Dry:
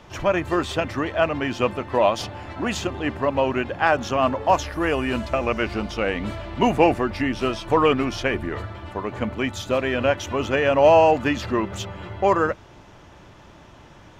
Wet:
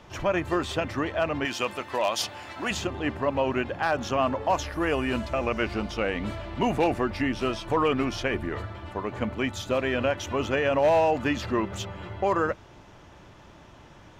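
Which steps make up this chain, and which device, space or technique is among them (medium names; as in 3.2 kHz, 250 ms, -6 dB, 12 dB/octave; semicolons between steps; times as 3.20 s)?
clipper into limiter (hard clipper -8.5 dBFS, distortion -24 dB; peak limiter -12 dBFS, peak gain reduction 3.5 dB); 1.45–2.71 s: tilt EQ +3 dB/octave; trim -3 dB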